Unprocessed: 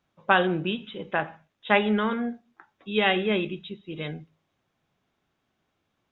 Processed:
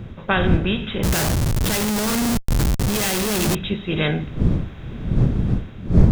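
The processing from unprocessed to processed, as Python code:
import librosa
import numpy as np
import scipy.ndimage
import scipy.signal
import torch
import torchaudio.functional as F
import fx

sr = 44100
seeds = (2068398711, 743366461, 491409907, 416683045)

y = fx.bin_compress(x, sr, power=0.6)
y = fx.dmg_wind(y, sr, seeds[0], corner_hz=190.0, level_db=-28.0)
y = fx.peak_eq(y, sr, hz=820.0, db=-3.0, octaves=0.52)
y = fx.notch(y, sr, hz=2900.0, q=20.0)
y = fx.schmitt(y, sr, flips_db=-33.0, at=(1.03, 3.55))
y = fx.bass_treble(y, sr, bass_db=6, treble_db=10)
y = fx.rider(y, sr, range_db=4, speed_s=0.5)
y = y * librosa.db_to_amplitude(1.0)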